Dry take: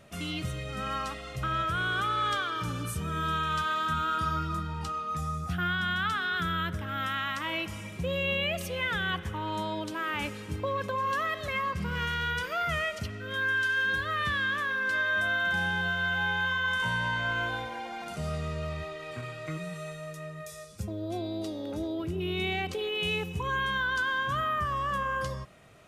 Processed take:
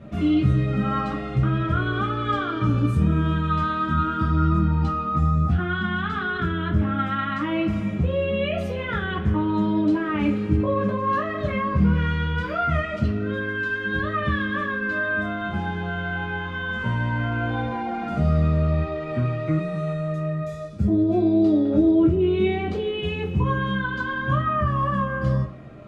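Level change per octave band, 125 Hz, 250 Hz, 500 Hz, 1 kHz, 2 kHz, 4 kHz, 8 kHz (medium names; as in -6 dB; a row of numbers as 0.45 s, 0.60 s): +13.5 dB, +15.5 dB, +9.5 dB, +4.0 dB, 0.0 dB, -3.5 dB, under -10 dB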